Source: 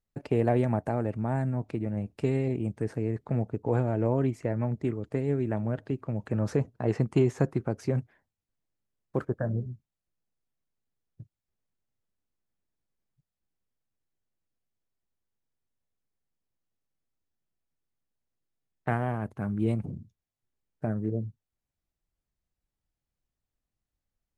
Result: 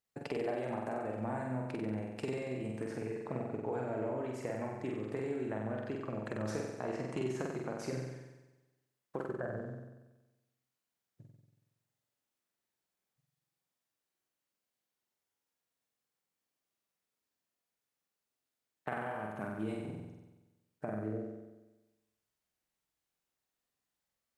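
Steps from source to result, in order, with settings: high-pass 530 Hz 6 dB/octave; compression, threshold -37 dBFS, peak gain reduction 12.5 dB; flutter echo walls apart 8 m, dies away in 1.1 s; trim +1 dB

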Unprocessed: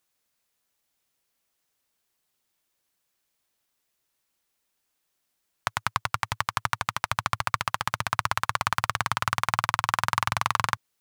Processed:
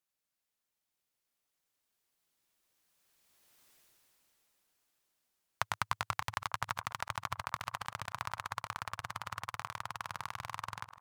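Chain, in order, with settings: chunks repeated in reverse 191 ms, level -12 dB; Doppler pass-by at 3.68 s, 10 m/s, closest 2.7 m; feedback echo behind a band-pass 900 ms, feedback 31%, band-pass 670 Hz, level -17 dB; trim +11 dB

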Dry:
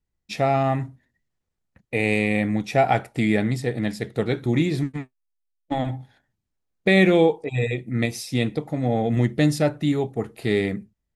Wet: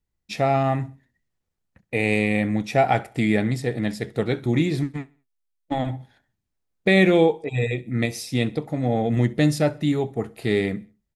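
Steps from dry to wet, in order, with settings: feedback delay 66 ms, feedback 41%, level -23 dB

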